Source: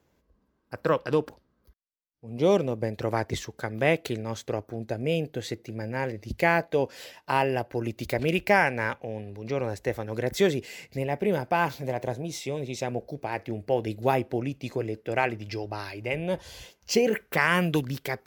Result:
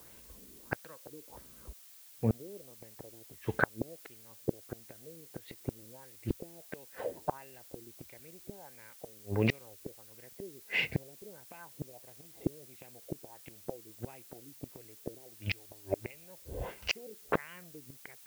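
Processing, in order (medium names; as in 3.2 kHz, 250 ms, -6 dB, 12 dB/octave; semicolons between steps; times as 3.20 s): recorder AGC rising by 7.4 dB/s; LFO low-pass sine 1.5 Hz 350–3000 Hz; inverted gate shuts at -22 dBFS, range -37 dB; added noise blue -62 dBFS; trim +6.5 dB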